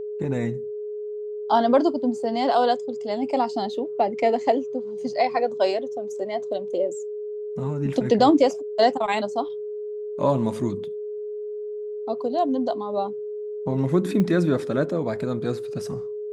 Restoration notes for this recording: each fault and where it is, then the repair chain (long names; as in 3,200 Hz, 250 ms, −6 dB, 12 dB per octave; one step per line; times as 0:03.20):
whistle 420 Hz −29 dBFS
0:14.20: click −14 dBFS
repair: click removal
notch filter 420 Hz, Q 30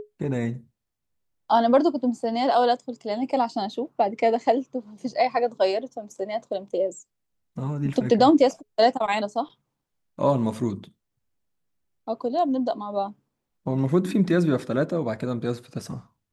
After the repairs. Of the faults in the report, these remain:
0:14.20: click